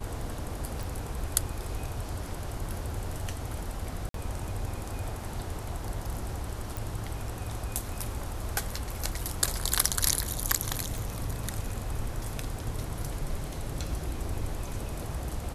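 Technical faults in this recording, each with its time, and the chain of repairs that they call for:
0.83 pop
4.09–4.14 gap 53 ms
6.77 pop
10.98 pop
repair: de-click; interpolate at 4.09, 53 ms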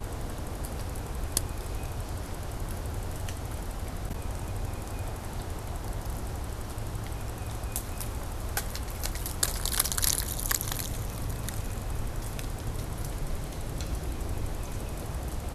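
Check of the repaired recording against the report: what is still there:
none

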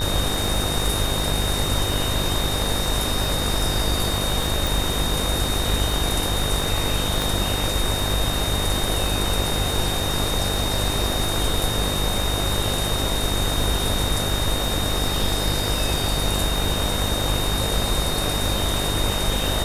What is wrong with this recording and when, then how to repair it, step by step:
buzz 50 Hz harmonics 39 -27 dBFS
crackle 53/s -27 dBFS
tone 3700 Hz -27 dBFS
4.67 pop
7.22 pop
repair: de-click; notch 3700 Hz, Q 30; de-hum 50 Hz, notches 39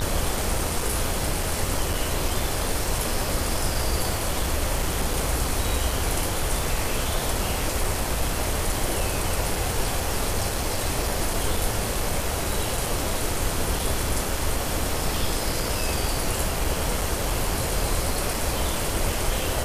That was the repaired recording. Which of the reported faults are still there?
7.22 pop

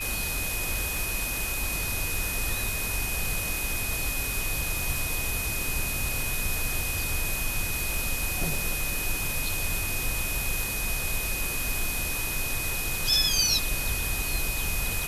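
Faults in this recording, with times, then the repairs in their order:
crackle 26/s -32 dBFS
tone 2500 Hz -33 dBFS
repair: de-click; notch 2500 Hz, Q 30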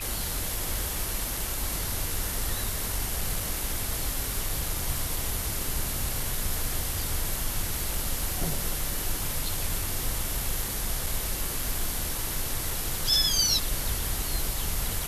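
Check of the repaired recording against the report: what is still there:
none

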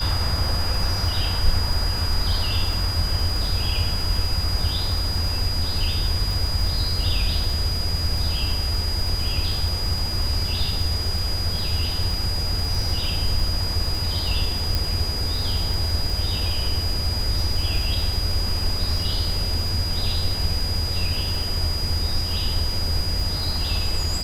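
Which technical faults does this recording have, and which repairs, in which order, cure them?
crackle 24/s -26 dBFS
tone 4900 Hz -27 dBFS
14.75 pop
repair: de-click; notch 4900 Hz, Q 30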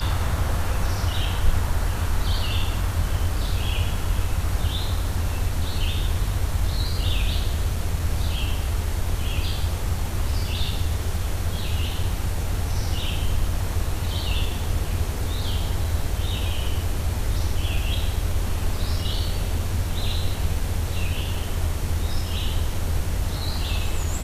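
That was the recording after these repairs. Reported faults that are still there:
none

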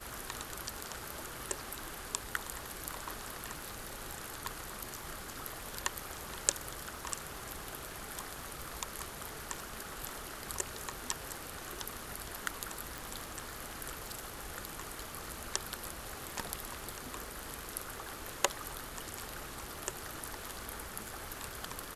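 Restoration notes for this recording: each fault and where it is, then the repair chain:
crackle 45/s -46 dBFS
12.98 pop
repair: de-click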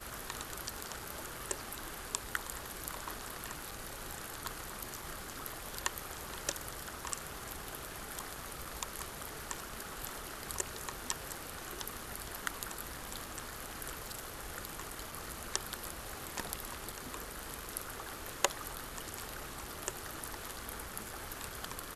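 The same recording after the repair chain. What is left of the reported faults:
none

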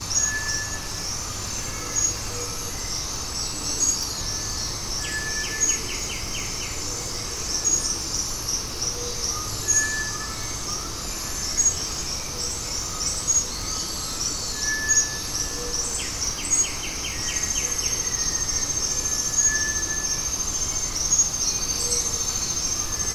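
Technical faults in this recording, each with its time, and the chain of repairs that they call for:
crackle 54/s -31 dBFS
4.03 pop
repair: de-click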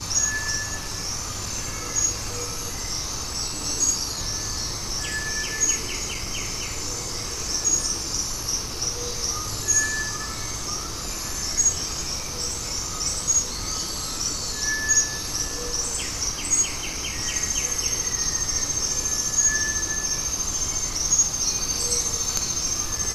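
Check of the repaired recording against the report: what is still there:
4.03 pop

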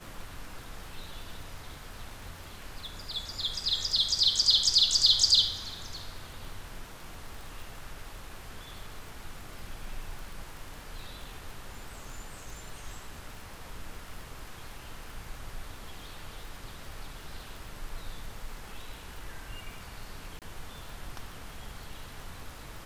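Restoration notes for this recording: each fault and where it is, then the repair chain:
crackle 38/s -39 dBFS
20.39–20.42 gap 28 ms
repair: de-click; interpolate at 20.39, 28 ms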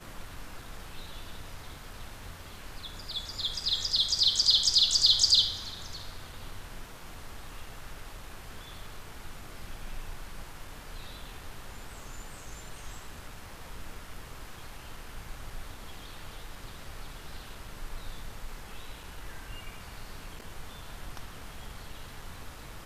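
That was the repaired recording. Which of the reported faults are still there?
none

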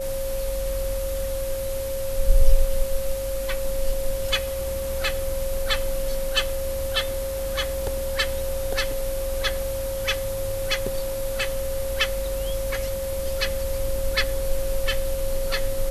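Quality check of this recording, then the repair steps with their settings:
tone 540 Hz -27 dBFS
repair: notch 540 Hz, Q 30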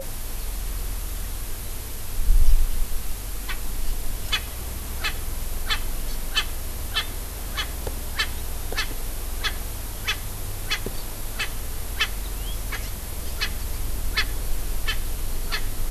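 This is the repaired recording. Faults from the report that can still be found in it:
none

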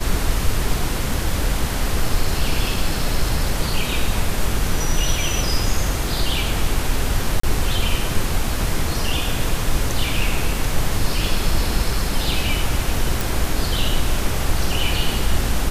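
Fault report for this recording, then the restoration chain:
7.4–7.43 gap 34 ms
13.21 pop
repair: de-click; interpolate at 7.4, 34 ms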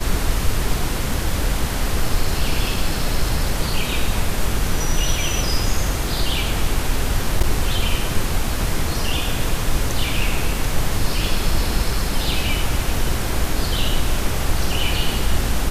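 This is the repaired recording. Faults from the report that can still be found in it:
none

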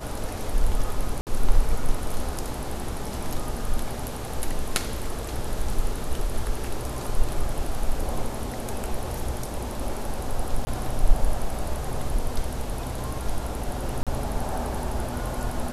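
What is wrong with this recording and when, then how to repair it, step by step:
1.21–1.27 gap 58 ms
10.65–10.67 gap 20 ms
14.03–14.07 gap 37 ms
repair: interpolate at 1.21, 58 ms; interpolate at 10.65, 20 ms; interpolate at 14.03, 37 ms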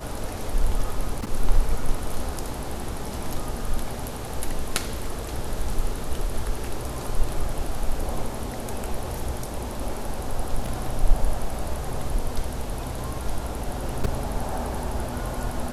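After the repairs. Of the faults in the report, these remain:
none

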